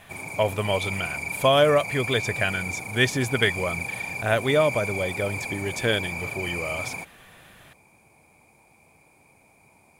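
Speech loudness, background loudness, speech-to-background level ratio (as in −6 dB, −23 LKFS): −25.0 LKFS, −31.0 LKFS, 6.0 dB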